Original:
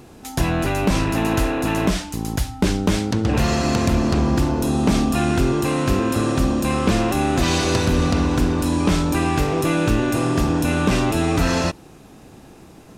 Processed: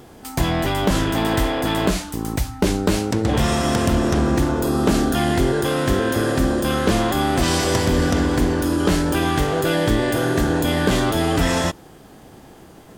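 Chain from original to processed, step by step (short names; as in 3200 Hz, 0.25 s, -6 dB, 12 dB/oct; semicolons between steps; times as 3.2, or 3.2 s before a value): formant shift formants +4 st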